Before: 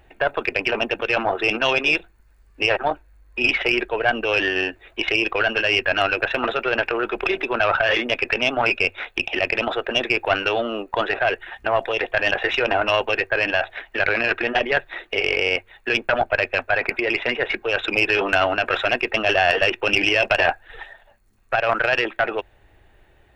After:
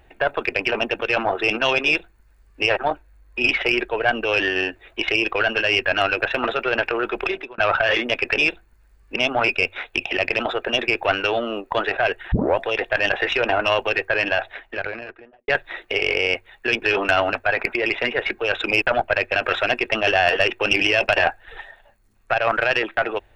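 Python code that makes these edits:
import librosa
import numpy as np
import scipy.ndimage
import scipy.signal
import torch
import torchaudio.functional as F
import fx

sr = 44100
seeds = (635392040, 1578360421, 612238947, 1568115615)

y = fx.studio_fade_out(x, sr, start_s=13.49, length_s=1.21)
y = fx.edit(y, sr, fx.duplicate(start_s=1.85, length_s=0.78, to_s=8.38),
    fx.fade_out_span(start_s=7.21, length_s=0.37),
    fx.tape_start(start_s=11.54, length_s=0.25),
    fx.swap(start_s=16.04, length_s=0.53, other_s=18.06, other_length_s=0.51), tone=tone)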